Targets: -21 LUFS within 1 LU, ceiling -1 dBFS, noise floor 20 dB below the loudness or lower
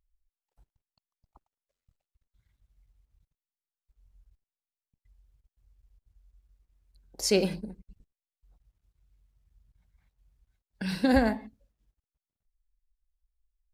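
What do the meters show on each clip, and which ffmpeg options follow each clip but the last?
loudness -28.0 LUFS; peak -9.0 dBFS; loudness target -21.0 LUFS
-> -af "volume=7dB"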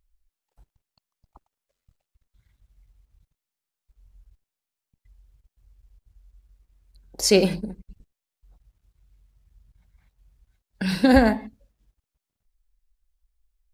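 loudness -21.0 LUFS; peak -2.0 dBFS; noise floor -88 dBFS

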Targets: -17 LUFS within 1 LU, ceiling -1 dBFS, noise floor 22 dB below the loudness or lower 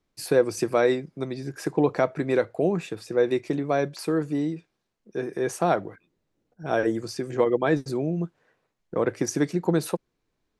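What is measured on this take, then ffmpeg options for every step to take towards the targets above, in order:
loudness -26.0 LUFS; peak -8.5 dBFS; loudness target -17.0 LUFS
-> -af "volume=9dB,alimiter=limit=-1dB:level=0:latency=1"

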